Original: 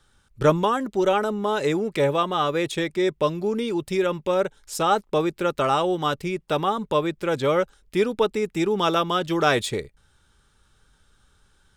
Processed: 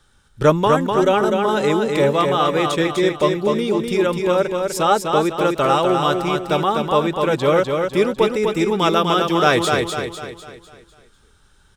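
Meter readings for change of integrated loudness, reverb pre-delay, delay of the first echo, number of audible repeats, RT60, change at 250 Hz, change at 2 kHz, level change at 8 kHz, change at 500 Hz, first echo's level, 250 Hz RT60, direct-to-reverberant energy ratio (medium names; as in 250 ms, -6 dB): +5.5 dB, no reverb, 250 ms, 5, no reverb, +5.5 dB, +5.5 dB, +5.5 dB, +5.5 dB, -4.5 dB, no reverb, no reverb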